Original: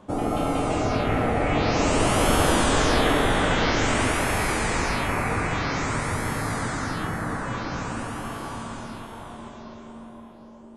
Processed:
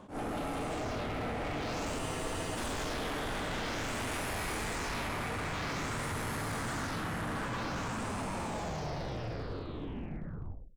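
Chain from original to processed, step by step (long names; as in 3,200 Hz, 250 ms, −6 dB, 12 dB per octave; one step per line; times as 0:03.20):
turntable brake at the end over 2.97 s
reversed playback
downward compressor, threshold −28 dBFS, peak gain reduction 12 dB
reversed playback
gain into a clipping stage and back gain 34 dB
on a send: single-tap delay 100 ms −14.5 dB
on the sum: frozen spectrum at 0:02.03, 0.54 s
level that may rise only so fast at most 180 dB per second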